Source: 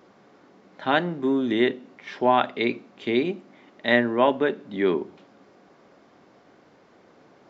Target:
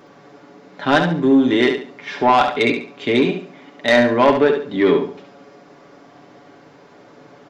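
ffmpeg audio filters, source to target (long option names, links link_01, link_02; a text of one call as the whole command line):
ffmpeg -i in.wav -af "aecho=1:1:7:0.57,asoftclip=type=tanh:threshold=-13.5dB,aecho=1:1:70|140|210|280:0.447|0.13|0.0376|0.0109,volume=7.5dB" out.wav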